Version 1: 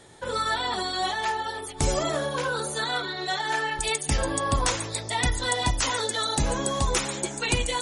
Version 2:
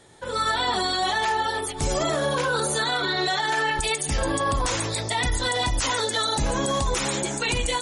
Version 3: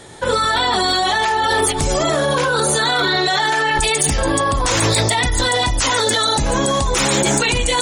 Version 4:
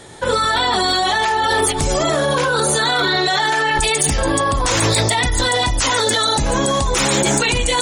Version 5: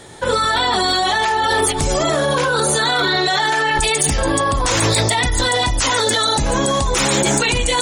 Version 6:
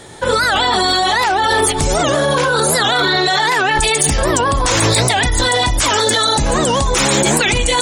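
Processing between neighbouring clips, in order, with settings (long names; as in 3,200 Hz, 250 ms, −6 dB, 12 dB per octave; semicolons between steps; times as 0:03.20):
automatic gain control gain up to 11 dB; brickwall limiter −13.5 dBFS, peak gain reduction 10.5 dB; level −2 dB
in parallel at +2.5 dB: compressor whose output falls as the input rises −28 dBFS, ratio −0.5; on the sum: gain into a clipping stage and back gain 11.5 dB; level +3 dB
no processing that can be heard
bit-depth reduction 12 bits, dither triangular
wow of a warped record 78 rpm, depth 250 cents; level +2.5 dB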